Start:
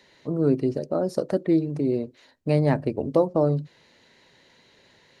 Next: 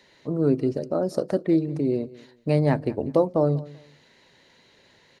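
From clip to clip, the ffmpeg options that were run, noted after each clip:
-af "aecho=1:1:193|386:0.1|0.024"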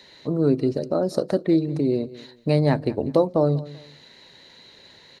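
-filter_complex "[0:a]equalizer=f=4k:t=o:w=0.24:g=9.5,asplit=2[a][b];[b]acompressor=threshold=-30dB:ratio=6,volume=-2.5dB[c];[a][c]amix=inputs=2:normalize=0"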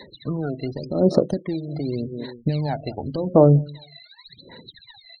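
-af "alimiter=limit=-15dB:level=0:latency=1:release=226,aphaser=in_gain=1:out_gain=1:delay=1.5:decay=0.79:speed=0.88:type=sinusoidal,afftfilt=real='re*gte(hypot(re,im),0.0126)':imag='im*gte(hypot(re,im),0.0126)':win_size=1024:overlap=0.75"

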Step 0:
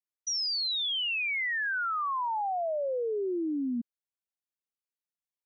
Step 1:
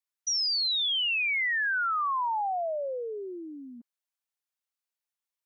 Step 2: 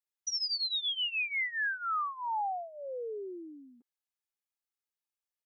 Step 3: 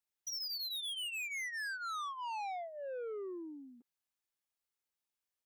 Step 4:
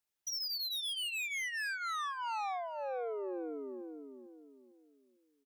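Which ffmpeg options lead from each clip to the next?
-af "highpass=650,volume=3dB"
-af "aecho=1:1:2.4:0.76,volume=-7.5dB"
-af "asoftclip=type=tanh:threshold=-39.5dB,volume=1dB"
-filter_complex "[0:a]asplit=2[a][b];[b]adelay=451,lowpass=f=1k:p=1,volume=-4dB,asplit=2[c][d];[d]adelay=451,lowpass=f=1k:p=1,volume=0.37,asplit=2[e][f];[f]adelay=451,lowpass=f=1k:p=1,volume=0.37,asplit=2[g][h];[h]adelay=451,lowpass=f=1k:p=1,volume=0.37,asplit=2[i][j];[j]adelay=451,lowpass=f=1k:p=1,volume=0.37[k];[a][c][e][g][i][k]amix=inputs=6:normalize=0,volume=2.5dB"

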